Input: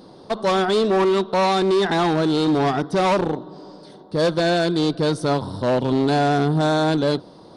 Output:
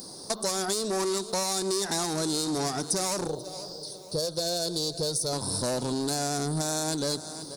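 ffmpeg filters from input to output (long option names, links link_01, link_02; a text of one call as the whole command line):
ffmpeg -i in.wav -filter_complex "[0:a]aecho=1:1:485|970|1455:0.0944|0.0359|0.0136,asoftclip=type=tanh:threshold=-14dB,aexciter=amount=7.8:drive=8.8:freq=4700,alimiter=limit=-9dB:level=0:latency=1:release=369,asettb=1/sr,asplit=3[link_01][link_02][link_03];[link_01]atrim=end=3.274[link_04];[link_02]atrim=start=3.27:end=5.33,asetpts=PTS-STARTPTS,afade=type=in:duration=0.004:curve=qsin,afade=type=out:start_time=2.056:duration=0.004:curve=qsin,equalizer=frequency=125:width_type=o:width=1:gain=4,equalizer=frequency=250:width_type=o:width=1:gain=-12,equalizer=frequency=500:width_type=o:width=1:gain=7,equalizer=frequency=1000:width_type=o:width=1:gain=-5,equalizer=frequency=2000:width_type=o:width=1:gain=-11,equalizer=frequency=4000:width_type=o:width=1:gain=4,equalizer=frequency=8000:width_type=o:width=1:gain=-7[link_05];[link_03]atrim=start=5.326[link_06];[link_04][link_05]acrossfade=duration=0.004:curve1=hsin:curve2=qsin[link_07];[link_07][link_06]acrossfade=duration=0.004:curve1=qsin:curve2=hsin,acompressor=threshold=-23dB:ratio=6,highshelf=frequency=9000:gain=8,volume=-3.5dB" out.wav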